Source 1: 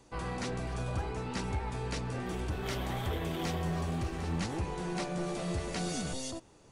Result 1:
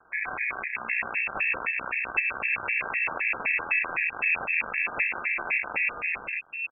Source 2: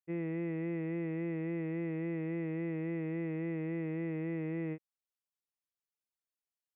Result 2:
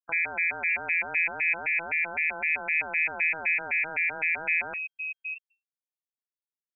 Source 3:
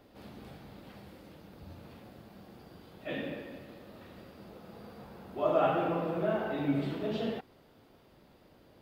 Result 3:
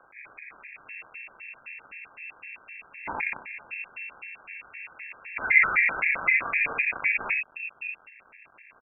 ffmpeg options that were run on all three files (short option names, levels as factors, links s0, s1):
-filter_complex "[0:a]asplit=2[s0][s1];[s1]acompressor=threshold=0.00708:ratio=8,volume=0.794[s2];[s0][s2]amix=inputs=2:normalize=0,acrusher=bits=6:dc=4:mix=0:aa=0.000001,acrossover=split=180[s3][s4];[s3]adelay=600[s5];[s5][s4]amix=inputs=2:normalize=0,lowpass=f=2300:t=q:w=0.5098,lowpass=f=2300:t=q:w=0.6013,lowpass=f=2300:t=q:w=0.9,lowpass=f=2300:t=q:w=2.563,afreqshift=-2700,afftfilt=real='re*gt(sin(2*PI*3.9*pts/sr)*(1-2*mod(floor(b*sr/1024/1600),2)),0)':imag='im*gt(sin(2*PI*3.9*pts/sr)*(1-2*mod(floor(b*sr/1024/1600),2)),0)':win_size=1024:overlap=0.75,volume=2.66"